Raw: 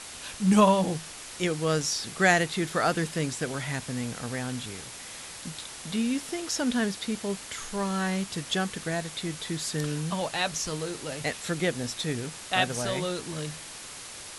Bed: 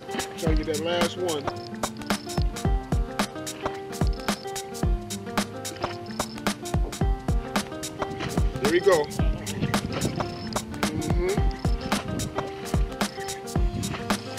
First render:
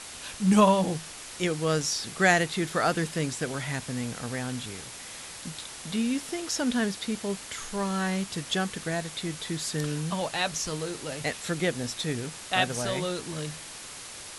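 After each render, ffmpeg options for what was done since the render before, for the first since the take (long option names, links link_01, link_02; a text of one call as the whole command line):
ffmpeg -i in.wav -af anull out.wav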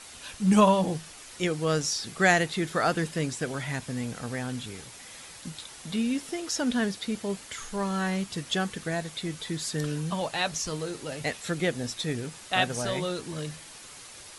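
ffmpeg -i in.wav -af "afftdn=noise_reduction=6:noise_floor=-43" out.wav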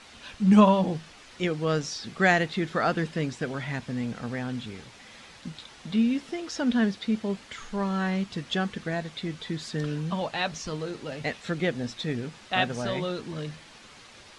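ffmpeg -i in.wav -af "lowpass=4300,equalizer=frequency=220:width_type=o:width=0.28:gain=6" out.wav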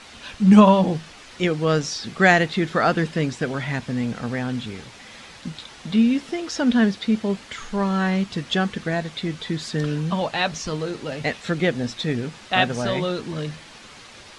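ffmpeg -i in.wav -af "volume=6dB,alimiter=limit=-2dB:level=0:latency=1" out.wav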